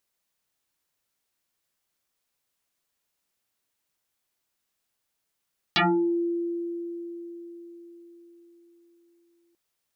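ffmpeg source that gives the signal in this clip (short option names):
-f lavfi -i "aevalsrc='0.133*pow(10,-3*t/4.77)*sin(2*PI*342*t+9.2*pow(10,-3*t/0.39)*sin(2*PI*1.52*342*t))':d=3.79:s=44100"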